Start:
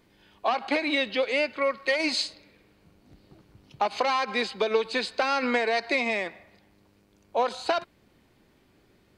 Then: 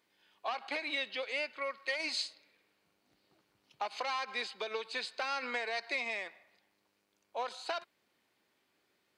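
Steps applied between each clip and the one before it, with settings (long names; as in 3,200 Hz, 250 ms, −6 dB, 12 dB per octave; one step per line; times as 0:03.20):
high-pass filter 1,000 Hz 6 dB per octave
level −7.5 dB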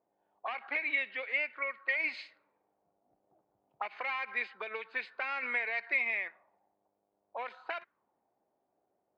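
envelope-controlled low-pass 710–2,200 Hz up, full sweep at −34.5 dBFS
level −4.5 dB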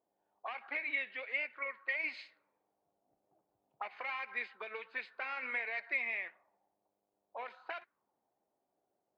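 flanger 1.4 Hz, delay 2.3 ms, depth 6.8 ms, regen −75%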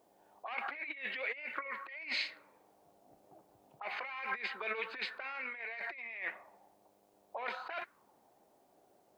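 compressor whose output falls as the input rises −49 dBFS, ratio −1
level +7.5 dB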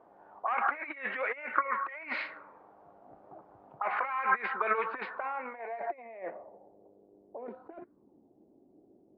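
low-pass filter sweep 1,300 Hz → 310 Hz, 0:04.72–0:07.56
level +7 dB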